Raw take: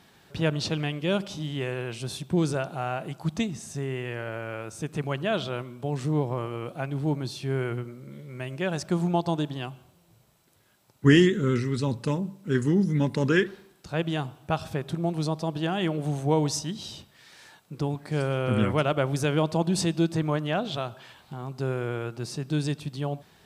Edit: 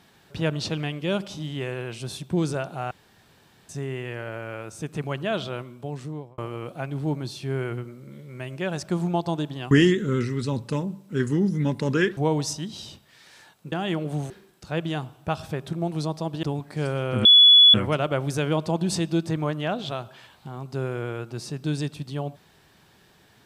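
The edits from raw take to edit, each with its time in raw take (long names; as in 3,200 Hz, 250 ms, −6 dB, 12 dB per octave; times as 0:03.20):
0:02.91–0:03.69: fill with room tone
0:05.35–0:06.38: fade out equal-power
0:09.71–0:11.06: remove
0:13.52–0:15.65: swap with 0:16.23–0:17.78
0:18.60: insert tone 3,410 Hz −9 dBFS 0.49 s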